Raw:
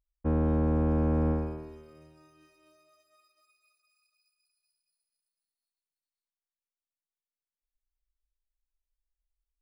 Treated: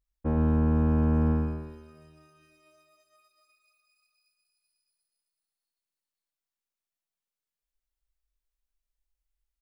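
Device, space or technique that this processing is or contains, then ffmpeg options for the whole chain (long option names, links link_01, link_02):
slapback doubling: -filter_complex "[0:a]asplit=2[link_01][link_02];[link_02]adelay=27,volume=-14dB[link_03];[link_01][link_03]amix=inputs=2:normalize=0,asplit=3[link_04][link_05][link_06];[link_05]adelay=21,volume=-8dB[link_07];[link_06]adelay=115,volume=-7dB[link_08];[link_04][link_07][link_08]amix=inputs=3:normalize=0"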